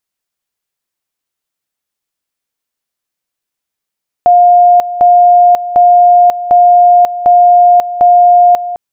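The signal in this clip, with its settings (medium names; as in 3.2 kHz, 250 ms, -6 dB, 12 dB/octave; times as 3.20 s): two-level tone 708 Hz -2 dBFS, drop 13.5 dB, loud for 0.54 s, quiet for 0.21 s, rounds 6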